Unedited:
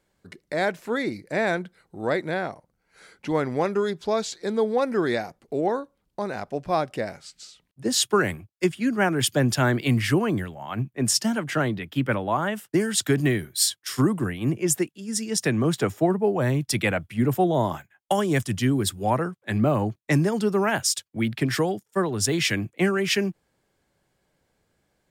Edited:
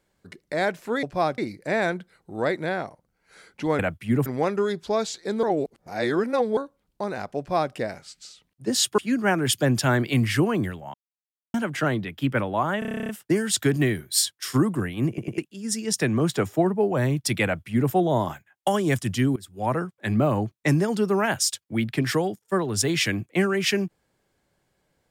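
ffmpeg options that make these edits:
ffmpeg -i in.wav -filter_complex "[0:a]asplit=24[link_01][link_02][link_03][link_04][link_05][link_06][link_07][link_08][link_09][link_10][link_11][link_12][link_13][link_14][link_15][link_16][link_17][link_18][link_19][link_20][link_21][link_22][link_23][link_24];[link_01]atrim=end=1.032[link_25];[link_02]atrim=start=6.558:end=6.912[link_26];[link_03]atrim=start=1.028:end=3.442[link_27];[link_04]atrim=start=16.878:end=17.352[link_28];[link_05]atrim=start=3.438:end=4.612[link_29];[link_06]atrim=start=4.608:end=5.752,asetpts=PTS-STARTPTS,areverse[link_30];[link_07]atrim=start=5.748:end=8.162[link_31];[link_08]atrim=start=8.718:end=10.68,asetpts=PTS-STARTPTS,afade=type=out:start_time=1.958:duration=0.004:curve=hsin[link_32];[link_09]atrim=start=10.68:end=11.28,asetpts=PTS-STARTPTS,volume=0[link_33];[link_10]atrim=start=11.28:end=12.562,asetpts=PTS-STARTPTS,afade=type=in:duration=0.004:curve=hsin[link_34];[link_11]atrim=start=12.528:end=12.562[link_35];[link_12]atrim=start=12.528:end=12.562[link_36];[link_13]atrim=start=12.528:end=12.562[link_37];[link_14]atrim=start=12.528:end=12.562[link_38];[link_15]atrim=start=12.528:end=12.562[link_39];[link_16]atrim=start=12.528:end=12.562[link_40];[link_17]atrim=start=12.528:end=12.562[link_41];[link_18]atrim=start=12.528:end=12.562[link_42];[link_19]atrim=start=12.528:end=12.562[link_43];[link_20]atrim=start=12.528:end=14.622[link_44];[link_21]atrim=start=14.518:end=14.622[link_45];[link_22]atrim=start=14.518:end=14.622[link_46];[link_23]atrim=start=14.818:end=18.8,asetpts=PTS-STARTPTS,afade=type=out:start_time=3.978:duration=0.004:curve=hsin:silence=0.1[link_47];[link_24]atrim=start=18.8,asetpts=PTS-STARTPTS,afade=type=in:duration=0.37:curve=qua:silence=0.1[link_48];[link_25][link_26]acrossfade=duration=0.004:curve1=hsin:curve2=hsin[link_49];[link_49][link_27]acrossfade=duration=0.004:curve1=hsin:curve2=hsin[link_50];[link_50][link_28]acrossfade=duration=0.004:curve1=hsin:curve2=hsin[link_51];[link_51][link_29]acrossfade=duration=0.004:curve1=hsin:curve2=hsin[link_52];[link_52][link_30]acrossfade=duration=0.004:curve1=hsin:curve2=hsin[link_53];[link_53][link_31]acrossfade=duration=0.004:curve1=hsin:curve2=hsin[link_54];[link_32][link_33][link_34]concat=n=3:v=0:a=1[link_55];[link_54][link_55]acrossfade=duration=0.004:curve1=hsin:curve2=hsin[link_56];[link_56][link_35]acrossfade=duration=0.004:curve1=hsin:curve2=hsin[link_57];[link_57][link_36]acrossfade=duration=0.004:curve1=hsin:curve2=hsin[link_58];[link_58][link_37]acrossfade=duration=0.004:curve1=hsin:curve2=hsin[link_59];[link_59][link_38]acrossfade=duration=0.004:curve1=hsin:curve2=hsin[link_60];[link_60][link_39]acrossfade=duration=0.004:curve1=hsin:curve2=hsin[link_61];[link_61][link_40]acrossfade=duration=0.004:curve1=hsin:curve2=hsin[link_62];[link_62][link_41]acrossfade=duration=0.004:curve1=hsin:curve2=hsin[link_63];[link_63][link_42]acrossfade=duration=0.004:curve1=hsin:curve2=hsin[link_64];[link_64][link_43]acrossfade=duration=0.004:curve1=hsin:curve2=hsin[link_65];[link_65][link_44]acrossfade=duration=0.004:curve1=hsin:curve2=hsin[link_66];[link_66][link_45]acrossfade=duration=0.004:curve1=hsin:curve2=hsin[link_67];[link_67][link_46]acrossfade=duration=0.004:curve1=hsin:curve2=hsin[link_68];[link_47][link_48]concat=n=2:v=0:a=1[link_69];[link_68][link_69]acrossfade=duration=0.004:curve1=hsin:curve2=hsin" out.wav

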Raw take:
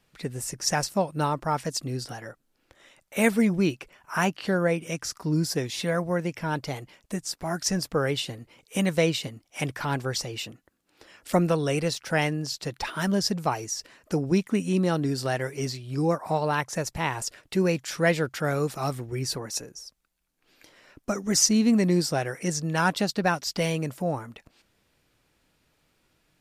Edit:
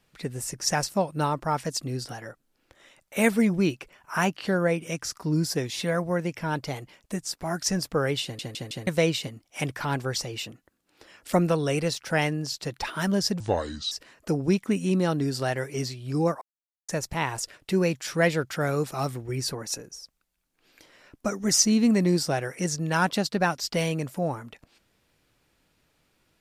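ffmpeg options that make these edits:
ffmpeg -i in.wav -filter_complex "[0:a]asplit=9[link_01][link_02][link_03][link_04][link_05][link_06][link_07][link_08][link_09];[link_01]atrim=end=8.392[link_10];[link_02]atrim=start=8.228:end=8.392[link_11];[link_03]atrim=start=8.228:end=8.392[link_12];[link_04]atrim=start=8.228:end=8.392[link_13];[link_05]atrim=start=8.868:end=13.404[link_14];[link_06]atrim=start=13.4:end=13.75,asetpts=PTS-STARTPTS,asetrate=29988,aresample=44100[link_15];[link_07]atrim=start=13.746:end=16.25,asetpts=PTS-STARTPTS,afade=type=out:start_time=2.5:duration=0.004:curve=hsin[link_16];[link_08]atrim=start=16.25:end=16.72,asetpts=PTS-STARTPTS,volume=0[link_17];[link_09]atrim=start=16.72,asetpts=PTS-STARTPTS,afade=type=in:duration=0.004:curve=hsin[link_18];[link_10][link_11]acrossfade=duration=0.004:curve1=hsin:curve2=hsin[link_19];[link_19][link_12]acrossfade=duration=0.004:curve1=hsin:curve2=hsin[link_20];[link_20][link_13]acrossfade=duration=0.004:curve1=hsin:curve2=hsin[link_21];[link_21][link_14]acrossfade=duration=0.004:curve1=hsin:curve2=hsin[link_22];[link_22][link_15]acrossfade=duration=0.004:curve1=hsin:curve2=hsin[link_23];[link_16][link_17][link_18]concat=n=3:v=0:a=1[link_24];[link_23][link_24]acrossfade=duration=0.004:curve1=hsin:curve2=hsin" out.wav

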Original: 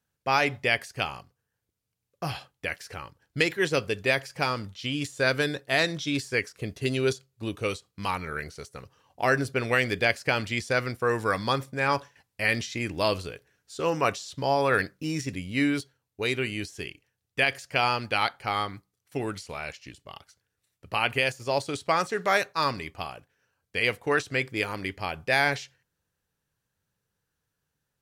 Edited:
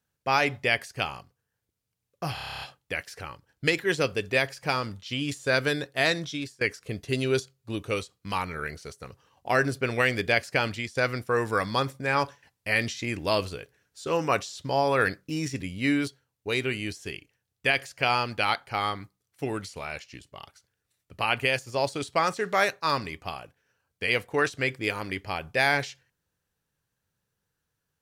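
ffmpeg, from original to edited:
ffmpeg -i in.wav -filter_complex "[0:a]asplit=12[link_01][link_02][link_03][link_04][link_05][link_06][link_07][link_08][link_09][link_10][link_11][link_12];[link_01]atrim=end=2.372[link_13];[link_02]atrim=start=2.338:end=2.372[link_14];[link_03]atrim=start=2.338:end=2.372[link_15];[link_04]atrim=start=2.338:end=2.372[link_16];[link_05]atrim=start=2.338:end=2.372[link_17];[link_06]atrim=start=2.338:end=2.372[link_18];[link_07]atrim=start=2.338:end=2.372[link_19];[link_08]atrim=start=2.338:end=2.372[link_20];[link_09]atrim=start=2.338:end=2.372[link_21];[link_10]atrim=start=2.338:end=6.34,asetpts=PTS-STARTPTS,afade=type=out:start_time=3.582:duration=0.42:silence=0.0794328[link_22];[link_11]atrim=start=6.34:end=10.68,asetpts=PTS-STARTPTS,afade=type=in:duration=0.004:curve=hsin:silence=0.0794328,afade=type=out:start_time=4.09:duration=0.25:silence=0.281838[link_23];[link_12]atrim=start=10.68,asetpts=PTS-STARTPTS,afade=type=in:duration=0.004:curve=hsin:silence=0.281838[link_24];[link_13][link_14]acrossfade=duration=0.004:curve1=hsin:curve2=hsin[link_25];[link_25][link_15]acrossfade=duration=0.004:curve1=hsin:curve2=hsin[link_26];[link_26][link_16]acrossfade=duration=0.004:curve1=hsin:curve2=hsin[link_27];[link_27][link_17]acrossfade=duration=0.004:curve1=hsin:curve2=hsin[link_28];[link_28][link_18]acrossfade=duration=0.004:curve1=hsin:curve2=hsin[link_29];[link_29][link_19]acrossfade=duration=0.004:curve1=hsin:curve2=hsin[link_30];[link_30][link_20]acrossfade=duration=0.004:curve1=hsin:curve2=hsin[link_31];[link_31][link_21]acrossfade=duration=0.004:curve1=hsin:curve2=hsin[link_32];[link_22][link_23][link_24]concat=n=3:v=0:a=1[link_33];[link_32][link_33]acrossfade=duration=0.004:curve1=hsin:curve2=hsin" out.wav

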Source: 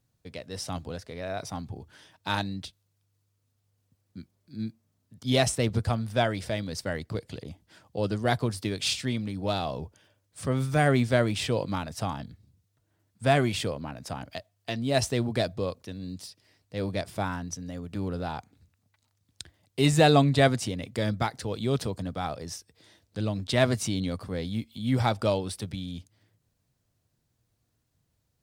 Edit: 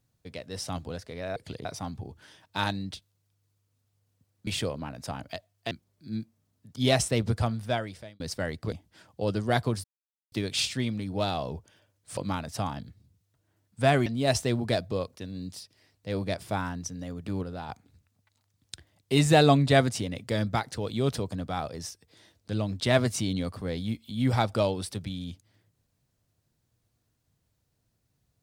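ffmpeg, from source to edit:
ffmpeg -i in.wav -filter_complex "[0:a]asplit=12[link_01][link_02][link_03][link_04][link_05][link_06][link_07][link_08][link_09][link_10][link_11][link_12];[link_01]atrim=end=1.362[link_13];[link_02]atrim=start=7.188:end=7.482[link_14];[link_03]atrim=start=1.358:end=4.182[link_15];[link_04]atrim=start=13.488:end=14.732[link_16];[link_05]atrim=start=4.178:end=6.67,asetpts=PTS-STARTPTS,afade=type=out:start_time=1.762:duration=0.73[link_17];[link_06]atrim=start=6.67:end=7.192,asetpts=PTS-STARTPTS,afade=type=in:duration=0.004:curve=hsin[link_18];[link_07]atrim=start=7.478:end=8.6,asetpts=PTS-STARTPTS,afade=type=out:start_time=1.118:duration=0.004:curve=hsin,apad=pad_dur=0.48[link_19];[link_08]atrim=start=8.6:end=10.452,asetpts=PTS-STARTPTS,afade=type=in:duration=0.004:curve=hsin[link_20];[link_09]atrim=start=11.598:end=13.492[link_21];[link_10]atrim=start=14.728:end=18.102[link_22];[link_11]atrim=start=18.098:end=18.362,asetpts=PTS-STARTPTS,volume=-5dB[link_23];[link_12]atrim=start=18.358[link_24];[link_13][link_14]acrossfade=duration=0.004:curve1=hsin:curve2=hsin[link_25];[link_25][link_15]acrossfade=duration=0.004:curve1=hsin:curve2=hsin[link_26];[link_26][link_16]acrossfade=duration=0.004:curve1=hsin:curve2=hsin[link_27];[link_17][link_18]concat=n=2:v=0:a=1[link_28];[link_27][link_28]acrossfade=duration=0.004:curve1=hsin:curve2=hsin[link_29];[link_19][link_20]concat=n=2:v=0:a=1[link_30];[link_29][link_30]acrossfade=duration=0.004:curve1=hsin:curve2=hsin[link_31];[link_31][link_21]acrossfade=duration=0.004:curve1=hsin:curve2=hsin[link_32];[link_32][link_22]acrossfade=duration=0.004:curve1=hsin:curve2=hsin[link_33];[link_33][link_23]acrossfade=duration=0.004:curve1=hsin:curve2=hsin[link_34];[link_34][link_24]acrossfade=duration=0.004:curve1=hsin:curve2=hsin" out.wav

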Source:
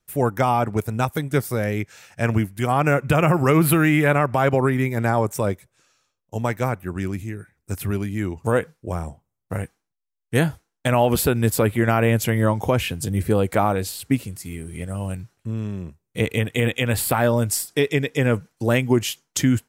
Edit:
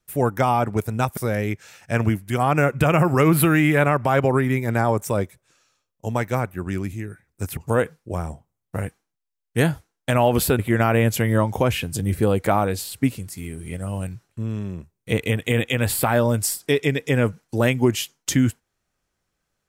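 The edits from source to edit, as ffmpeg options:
ffmpeg -i in.wav -filter_complex "[0:a]asplit=4[link_01][link_02][link_03][link_04];[link_01]atrim=end=1.172[link_05];[link_02]atrim=start=1.458:end=7.862[link_06];[link_03]atrim=start=8.338:end=11.362[link_07];[link_04]atrim=start=11.668[link_08];[link_05][link_06]acrossfade=duration=0.004:curve1=hsin:curve2=hsin[link_09];[link_09][link_07]acrossfade=duration=0.004:curve1=hsin:curve2=hsin[link_10];[link_10][link_08]acrossfade=duration=0.004:curve1=hsin:curve2=hsin" out.wav

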